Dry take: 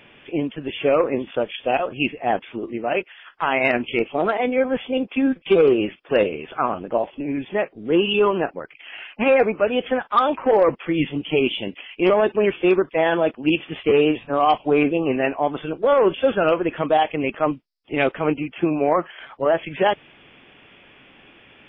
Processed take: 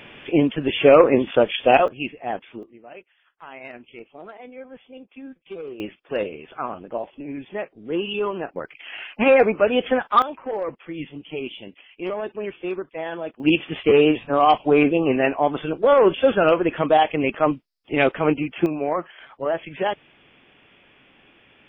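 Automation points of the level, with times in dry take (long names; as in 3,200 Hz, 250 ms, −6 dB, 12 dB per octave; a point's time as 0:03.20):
+6 dB
from 0:01.88 −6.5 dB
from 0:02.63 −19.5 dB
from 0:05.80 −7 dB
from 0:08.56 +1.5 dB
from 0:10.22 −11 dB
from 0:13.40 +1.5 dB
from 0:18.66 −5 dB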